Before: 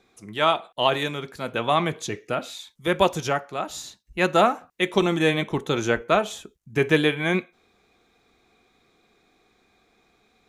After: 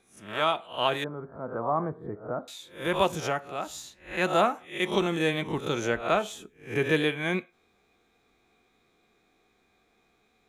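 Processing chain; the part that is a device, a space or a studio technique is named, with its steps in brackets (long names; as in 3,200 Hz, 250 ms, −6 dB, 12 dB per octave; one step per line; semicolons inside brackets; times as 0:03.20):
peak hold with a rise ahead of every peak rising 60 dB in 0.37 s
exciter from parts (in parallel at −11 dB: high-pass filter 3,200 Hz 12 dB per octave + soft clipping −32 dBFS, distortion −7 dB + high-pass filter 3,100 Hz 24 dB per octave)
0:01.04–0:02.48: on the sum: inverse Chebyshev low-pass filter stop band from 2,500 Hz, stop band 40 dB
level −6 dB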